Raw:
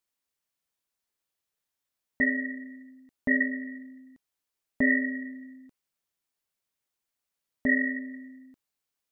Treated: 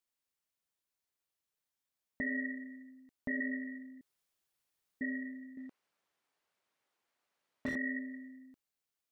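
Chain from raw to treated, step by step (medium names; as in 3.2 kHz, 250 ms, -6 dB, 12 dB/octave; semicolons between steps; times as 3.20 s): peak limiter -23 dBFS, peak gain reduction 10.5 dB; 4.01–5.01 s: room tone; 5.57–7.76 s: overdrive pedal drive 24 dB, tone 1 kHz, clips at -23 dBFS; trim -4.5 dB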